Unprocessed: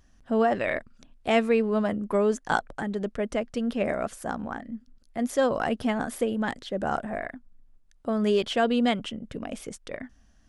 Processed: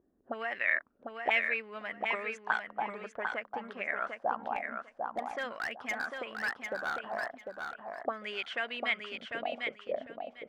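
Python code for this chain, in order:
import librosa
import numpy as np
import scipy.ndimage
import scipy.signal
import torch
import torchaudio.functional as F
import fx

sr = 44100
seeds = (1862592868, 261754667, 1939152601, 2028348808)

y = fx.env_lowpass(x, sr, base_hz=1600.0, full_db=-22.5)
y = 10.0 ** (-10.0 / 20.0) * np.tanh(y / 10.0 ** (-10.0 / 20.0))
y = fx.auto_wah(y, sr, base_hz=370.0, top_hz=2200.0, q=4.0, full_db=-22.0, direction='up')
y = fx.clip_hard(y, sr, threshold_db=-34.5, at=(4.55, 7.04))
y = fx.echo_feedback(y, sr, ms=749, feedback_pct=19, wet_db=-5)
y = y * librosa.db_to_amplitude(6.0)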